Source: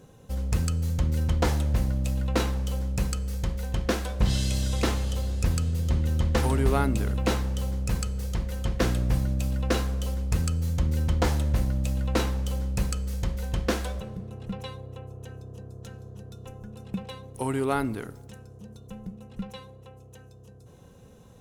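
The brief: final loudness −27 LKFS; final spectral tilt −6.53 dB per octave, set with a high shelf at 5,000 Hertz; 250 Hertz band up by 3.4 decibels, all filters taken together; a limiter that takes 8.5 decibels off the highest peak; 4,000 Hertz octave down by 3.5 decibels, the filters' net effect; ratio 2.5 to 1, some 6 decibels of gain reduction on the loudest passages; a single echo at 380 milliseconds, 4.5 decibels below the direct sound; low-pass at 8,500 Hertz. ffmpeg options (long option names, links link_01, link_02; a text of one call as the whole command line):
ffmpeg -i in.wav -af "lowpass=8500,equalizer=frequency=250:width_type=o:gain=4.5,equalizer=frequency=4000:width_type=o:gain=-7,highshelf=frequency=5000:gain=5.5,acompressor=threshold=-27dB:ratio=2.5,alimiter=limit=-24dB:level=0:latency=1,aecho=1:1:380:0.596,volume=6dB" out.wav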